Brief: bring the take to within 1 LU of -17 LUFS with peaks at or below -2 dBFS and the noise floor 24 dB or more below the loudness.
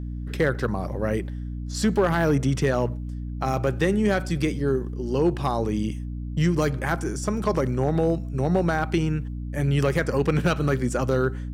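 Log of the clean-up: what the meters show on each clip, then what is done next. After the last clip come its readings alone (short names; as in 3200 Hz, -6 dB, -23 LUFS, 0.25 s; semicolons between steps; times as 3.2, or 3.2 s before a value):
clipped 0.4%; flat tops at -13.0 dBFS; hum 60 Hz; harmonics up to 300 Hz; hum level -29 dBFS; loudness -24.5 LUFS; peak -13.0 dBFS; loudness target -17.0 LUFS
-> clip repair -13 dBFS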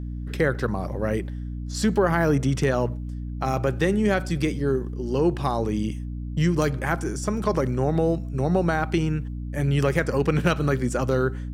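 clipped 0.0%; hum 60 Hz; harmonics up to 300 Hz; hum level -29 dBFS
-> notches 60/120/180/240/300 Hz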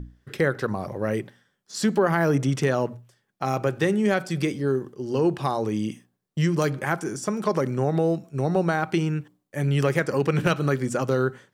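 hum none; loudness -25.0 LUFS; peak -6.0 dBFS; loudness target -17.0 LUFS
-> gain +8 dB; limiter -2 dBFS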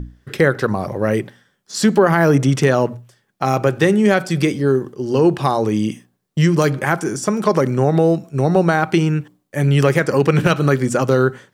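loudness -17.0 LUFS; peak -2.0 dBFS; noise floor -66 dBFS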